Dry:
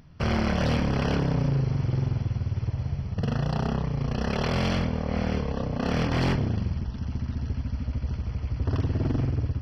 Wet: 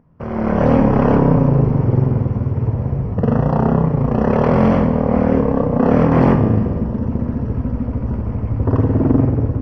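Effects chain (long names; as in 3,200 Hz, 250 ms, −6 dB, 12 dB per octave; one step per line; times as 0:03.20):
spectral tilt −1.5 dB per octave
tuned comb filter 54 Hz, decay 1.5 s, harmonics all, mix 70%
automatic gain control gain up to 14 dB
graphic EQ with 10 bands 125 Hz +4 dB, 250 Hz +10 dB, 500 Hz +11 dB, 1,000 Hz +12 dB, 2,000 Hz +5 dB, 4,000 Hz −10 dB
on a send: bucket-brigade delay 491 ms, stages 2,048, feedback 70%, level −15 dB
on the sum: level −6.5 dB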